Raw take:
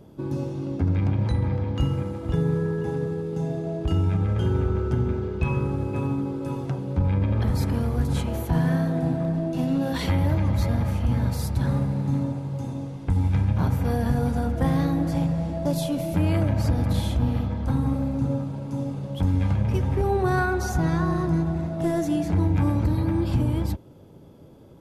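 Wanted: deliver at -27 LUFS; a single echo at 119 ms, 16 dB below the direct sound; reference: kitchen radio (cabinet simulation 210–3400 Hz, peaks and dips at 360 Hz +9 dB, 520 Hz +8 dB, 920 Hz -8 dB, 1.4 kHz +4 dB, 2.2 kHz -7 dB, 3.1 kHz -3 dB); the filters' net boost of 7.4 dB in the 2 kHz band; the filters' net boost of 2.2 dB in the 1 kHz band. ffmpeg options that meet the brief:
-af "highpass=210,equalizer=f=360:t=q:w=4:g=9,equalizer=f=520:t=q:w=4:g=8,equalizer=f=920:t=q:w=4:g=-8,equalizer=f=1400:t=q:w=4:g=4,equalizer=f=2200:t=q:w=4:g=-7,equalizer=f=3100:t=q:w=4:g=-3,lowpass=f=3400:w=0.5412,lowpass=f=3400:w=1.3066,equalizer=f=1000:t=o:g=3.5,equalizer=f=2000:t=o:g=8,aecho=1:1:119:0.158,volume=0.75"

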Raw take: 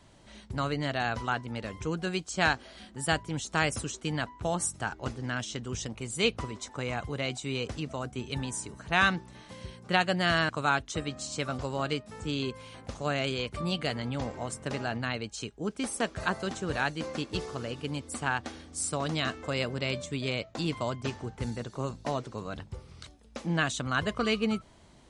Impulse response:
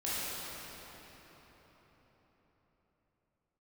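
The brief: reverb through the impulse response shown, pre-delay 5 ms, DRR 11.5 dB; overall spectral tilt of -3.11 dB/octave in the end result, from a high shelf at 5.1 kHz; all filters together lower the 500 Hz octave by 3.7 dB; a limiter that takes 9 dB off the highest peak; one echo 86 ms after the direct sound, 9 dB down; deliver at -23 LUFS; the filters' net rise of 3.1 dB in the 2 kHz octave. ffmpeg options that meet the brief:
-filter_complex "[0:a]equalizer=f=500:t=o:g=-5,equalizer=f=2000:t=o:g=3.5,highshelf=f=5100:g=7,alimiter=limit=0.168:level=0:latency=1,aecho=1:1:86:0.355,asplit=2[s0][s1];[1:a]atrim=start_sample=2205,adelay=5[s2];[s1][s2]afir=irnorm=-1:irlink=0,volume=0.119[s3];[s0][s3]amix=inputs=2:normalize=0,volume=2.51"

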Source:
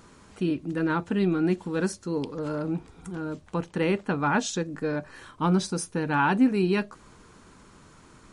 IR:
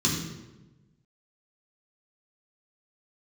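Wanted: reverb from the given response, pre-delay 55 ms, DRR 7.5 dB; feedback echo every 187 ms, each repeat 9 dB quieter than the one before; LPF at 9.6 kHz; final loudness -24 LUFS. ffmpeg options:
-filter_complex "[0:a]lowpass=9600,aecho=1:1:187|374|561|748:0.355|0.124|0.0435|0.0152,asplit=2[s0][s1];[1:a]atrim=start_sample=2205,adelay=55[s2];[s1][s2]afir=irnorm=-1:irlink=0,volume=0.126[s3];[s0][s3]amix=inputs=2:normalize=0,volume=0.75"

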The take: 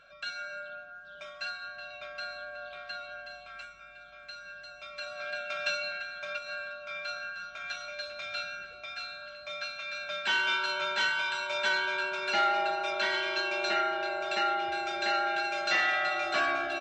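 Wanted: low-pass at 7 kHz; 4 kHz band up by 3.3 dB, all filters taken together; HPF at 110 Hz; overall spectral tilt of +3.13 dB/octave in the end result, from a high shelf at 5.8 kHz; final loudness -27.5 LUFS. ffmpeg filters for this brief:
-af "highpass=110,lowpass=7000,equalizer=f=4000:t=o:g=7,highshelf=f=5800:g=-8.5,volume=1.41"

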